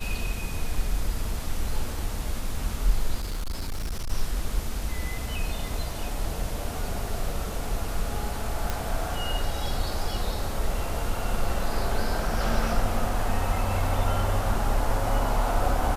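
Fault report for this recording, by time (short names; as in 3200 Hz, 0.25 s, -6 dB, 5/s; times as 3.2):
3.15–4.12 clipped -26 dBFS
8.7 pop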